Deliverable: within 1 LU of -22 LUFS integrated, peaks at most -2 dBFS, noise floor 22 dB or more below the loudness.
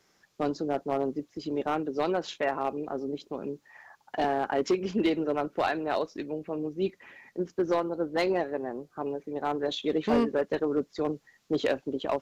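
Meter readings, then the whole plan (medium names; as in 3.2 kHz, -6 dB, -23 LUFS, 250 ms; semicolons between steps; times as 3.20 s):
clipped samples 0.5%; clipping level -18.5 dBFS; loudness -30.5 LUFS; peak level -18.5 dBFS; loudness target -22.0 LUFS
-> clip repair -18.5 dBFS; trim +8.5 dB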